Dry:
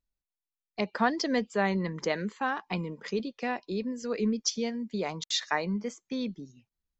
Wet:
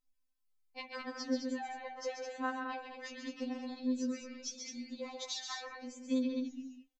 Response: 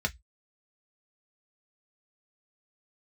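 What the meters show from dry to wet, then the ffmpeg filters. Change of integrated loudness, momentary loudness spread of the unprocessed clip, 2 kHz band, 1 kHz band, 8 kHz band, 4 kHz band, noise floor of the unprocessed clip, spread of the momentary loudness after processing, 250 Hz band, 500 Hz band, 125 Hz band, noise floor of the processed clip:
−8.5 dB, 7 LU, −10.5 dB, −10.0 dB, can't be measured, −9.0 dB, below −85 dBFS, 10 LU, −6.0 dB, −10.5 dB, below −30 dB, −77 dBFS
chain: -af "bandreject=frequency=70.63:width_type=h:width=4,bandreject=frequency=141.26:width_type=h:width=4,bandreject=frequency=211.89:width_type=h:width=4,bandreject=frequency=282.52:width_type=h:width=4,bandreject=frequency=353.15:width_type=h:width=4,bandreject=frequency=423.78:width_type=h:width=4,bandreject=frequency=494.41:width_type=h:width=4,bandreject=frequency=565.04:width_type=h:width=4,bandreject=frequency=635.67:width_type=h:width=4,bandreject=frequency=706.3:width_type=h:width=4,bandreject=frequency=776.93:width_type=h:width=4,bandreject=frequency=847.56:width_type=h:width=4,bandreject=frequency=918.19:width_type=h:width=4,bandreject=frequency=988.82:width_type=h:width=4,bandreject=frequency=1059.45:width_type=h:width=4,bandreject=frequency=1130.08:width_type=h:width=4,bandreject=frequency=1200.71:width_type=h:width=4,bandreject=frequency=1271.34:width_type=h:width=4,bandreject=frequency=1341.97:width_type=h:width=4,bandreject=frequency=1412.6:width_type=h:width=4,bandreject=frequency=1483.23:width_type=h:width=4,bandreject=frequency=1553.86:width_type=h:width=4,bandreject=frequency=1624.49:width_type=h:width=4,bandreject=frequency=1695.12:width_type=h:width=4,bandreject=frequency=1765.75:width_type=h:width=4,bandreject=frequency=1836.38:width_type=h:width=4,bandreject=frequency=1907.01:width_type=h:width=4,bandreject=frequency=1977.64:width_type=h:width=4,bandreject=frequency=2048.27:width_type=h:width=4,bandreject=frequency=2118.9:width_type=h:width=4,bandreject=frequency=2189.53:width_type=h:width=4,bandreject=frequency=2260.16:width_type=h:width=4,bandreject=frequency=2330.79:width_type=h:width=4,bandreject=frequency=2401.42:width_type=h:width=4,bandreject=frequency=2472.05:width_type=h:width=4,bandreject=frequency=2542.68:width_type=h:width=4,bandreject=frequency=2613.31:width_type=h:width=4,bandreject=frequency=2683.94:width_type=h:width=4,bandreject=frequency=2754.57:width_type=h:width=4,bandreject=frequency=2825.2:width_type=h:width=4,acompressor=threshold=-39dB:ratio=6,flanger=delay=6.3:depth=6.4:regen=86:speed=1.3:shape=triangular,aecho=1:1:134.1|209.9:0.501|0.501,afftfilt=real='re*3.46*eq(mod(b,12),0)':imag='im*3.46*eq(mod(b,12),0)':win_size=2048:overlap=0.75,volume=7dB"

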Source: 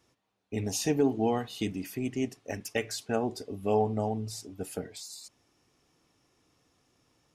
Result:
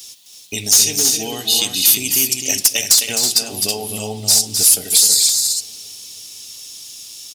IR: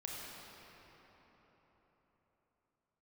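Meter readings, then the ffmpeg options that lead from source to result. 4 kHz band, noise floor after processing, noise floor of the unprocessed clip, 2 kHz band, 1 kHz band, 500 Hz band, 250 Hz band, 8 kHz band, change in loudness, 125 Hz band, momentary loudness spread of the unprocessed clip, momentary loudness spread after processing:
+27.0 dB, −41 dBFS, −77 dBFS, +13.5 dB, +1.0 dB, 0.0 dB, +0.5 dB, +29.0 dB, +18.5 dB, +2.5 dB, 13 LU, 22 LU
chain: -filter_complex "[0:a]highshelf=frequency=2400:width_type=q:width=1.5:gain=12.5,acompressor=threshold=-36dB:ratio=4,crystalizer=i=8:c=0,asoftclip=type=hard:threshold=-13.5dB,aecho=1:1:260|325:0.473|0.473,asplit=2[link_01][link_02];[1:a]atrim=start_sample=2205[link_03];[link_02][link_03]afir=irnorm=-1:irlink=0,volume=-15.5dB[link_04];[link_01][link_04]amix=inputs=2:normalize=0,volume=7dB"

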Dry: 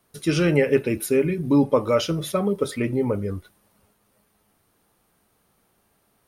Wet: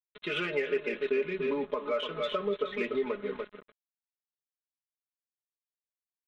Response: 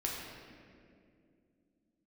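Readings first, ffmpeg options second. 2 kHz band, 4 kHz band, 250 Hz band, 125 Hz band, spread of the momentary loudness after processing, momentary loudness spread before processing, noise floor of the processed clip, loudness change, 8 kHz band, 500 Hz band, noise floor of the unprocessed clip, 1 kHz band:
−4.0 dB, −5.0 dB, −16.0 dB, −23.0 dB, 5 LU, 6 LU, below −85 dBFS, −10.0 dB, below −25 dB, −8.0 dB, −67 dBFS, −7.0 dB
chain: -filter_complex "[0:a]highpass=510,aecho=1:1:292|584|876:0.316|0.0696|0.0153,aresample=8000,aeval=exprs='sgn(val(0))*max(abs(val(0))-0.00631,0)':channel_layout=same,aresample=44100,acompressor=threshold=-33dB:ratio=6,asplit=2[link_01][link_02];[link_02]asoftclip=type=tanh:threshold=-35.5dB,volume=-4dB[link_03];[link_01][link_03]amix=inputs=2:normalize=0,equalizer=frequency=780:width_type=o:width=0.21:gain=-15,aecho=1:1:4.8:0.94"

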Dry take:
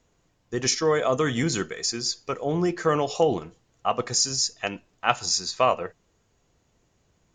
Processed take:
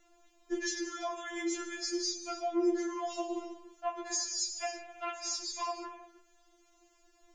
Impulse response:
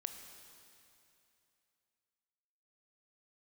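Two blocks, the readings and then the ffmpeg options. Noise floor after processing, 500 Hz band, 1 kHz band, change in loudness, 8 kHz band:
−67 dBFS, −12.0 dB, −11.0 dB, −10.5 dB, −9.0 dB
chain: -filter_complex "[0:a]acompressor=threshold=-36dB:ratio=6[link_01];[1:a]atrim=start_sample=2205,afade=type=out:start_time=0.4:duration=0.01,atrim=end_sample=18081[link_02];[link_01][link_02]afir=irnorm=-1:irlink=0,afftfilt=real='re*4*eq(mod(b,16),0)':imag='im*4*eq(mod(b,16),0)':win_size=2048:overlap=0.75,volume=7.5dB"

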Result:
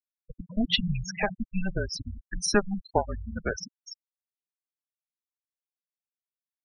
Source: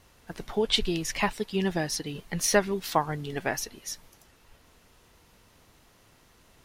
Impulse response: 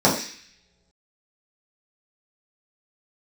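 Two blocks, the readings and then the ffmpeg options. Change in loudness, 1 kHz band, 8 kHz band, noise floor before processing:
−1.5 dB, −3.5 dB, −5.5 dB, −60 dBFS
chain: -af "afreqshift=-200,afftfilt=real='re*gte(hypot(re,im),0.0708)':imag='im*gte(hypot(re,im),0.0708)':win_size=1024:overlap=0.75"

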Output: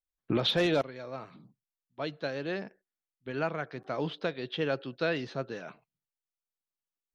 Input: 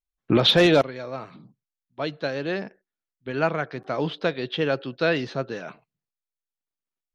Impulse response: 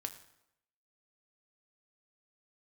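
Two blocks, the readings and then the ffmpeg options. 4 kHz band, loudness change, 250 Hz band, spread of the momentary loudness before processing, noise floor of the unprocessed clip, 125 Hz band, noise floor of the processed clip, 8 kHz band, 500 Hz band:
−9.5 dB, −9.0 dB, −8.5 dB, 18 LU, below −85 dBFS, −8.5 dB, below −85 dBFS, can't be measured, −8.5 dB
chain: -af "alimiter=limit=-11.5dB:level=0:latency=1:release=350,volume=-6.5dB"

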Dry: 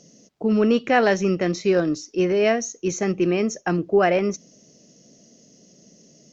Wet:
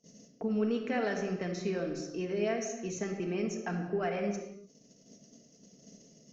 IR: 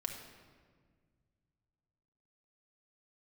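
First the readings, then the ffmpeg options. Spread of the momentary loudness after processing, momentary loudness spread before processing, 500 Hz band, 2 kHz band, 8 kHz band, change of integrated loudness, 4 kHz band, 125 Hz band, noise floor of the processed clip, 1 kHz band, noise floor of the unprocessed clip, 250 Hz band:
6 LU, 7 LU, −13.0 dB, −13.5 dB, can't be measured, −12.5 dB, −13.0 dB, −10.5 dB, −62 dBFS, −14.5 dB, −55 dBFS, −11.5 dB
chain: -filter_complex "[0:a]acompressor=threshold=-42dB:ratio=2,agate=range=-22dB:threshold=-51dB:ratio=16:detection=peak[link_01];[1:a]atrim=start_sample=2205,afade=type=out:start_time=0.41:duration=0.01,atrim=end_sample=18522[link_02];[link_01][link_02]afir=irnorm=-1:irlink=0"

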